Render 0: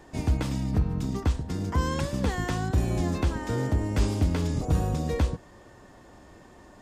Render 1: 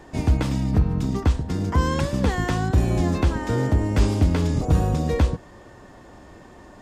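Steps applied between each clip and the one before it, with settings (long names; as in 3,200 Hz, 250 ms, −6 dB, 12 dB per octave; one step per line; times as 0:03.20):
high-shelf EQ 5,200 Hz −4.5 dB
level +5.5 dB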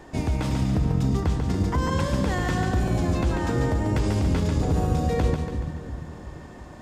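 brickwall limiter −16.5 dBFS, peak gain reduction 9 dB
echo with a time of its own for lows and highs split 380 Hz, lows 343 ms, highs 142 ms, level −5 dB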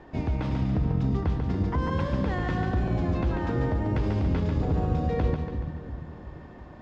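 high-frequency loss of the air 220 metres
level −2.5 dB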